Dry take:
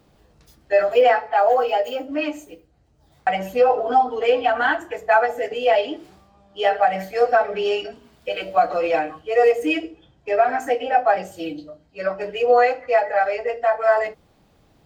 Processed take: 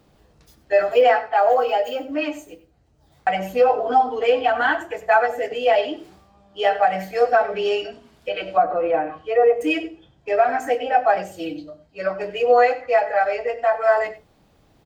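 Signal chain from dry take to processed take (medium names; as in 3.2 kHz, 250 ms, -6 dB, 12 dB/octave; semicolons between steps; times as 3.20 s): delay 95 ms -16.5 dB; 7.82–9.61 s: low-pass that closes with the level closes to 1.4 kHz, closed at -17 dBFS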